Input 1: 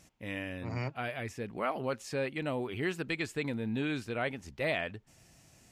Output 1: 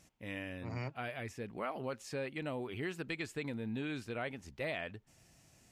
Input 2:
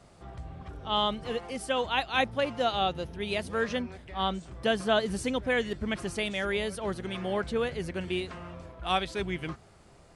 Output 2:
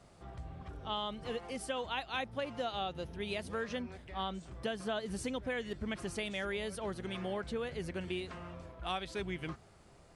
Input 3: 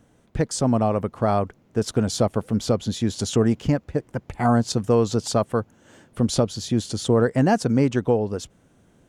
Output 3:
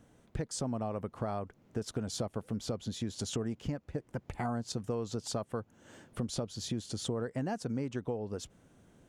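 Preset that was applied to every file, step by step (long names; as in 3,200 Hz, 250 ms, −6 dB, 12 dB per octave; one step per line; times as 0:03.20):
downward compressor 4 to 1, threshold −30 dBFS
level −4 dB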